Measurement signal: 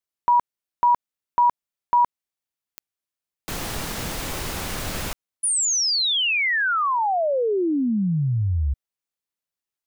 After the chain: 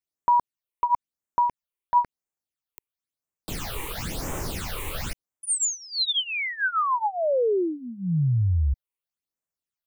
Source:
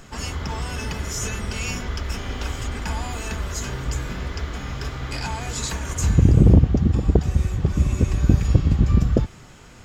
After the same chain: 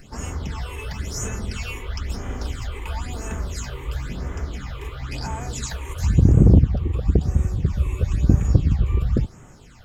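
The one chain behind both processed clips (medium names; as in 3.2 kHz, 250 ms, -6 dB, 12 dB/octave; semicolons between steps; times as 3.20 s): phase shifter stages 8, 0.98 Hz, lowest notch 190–4400 Hz; trim -1 dB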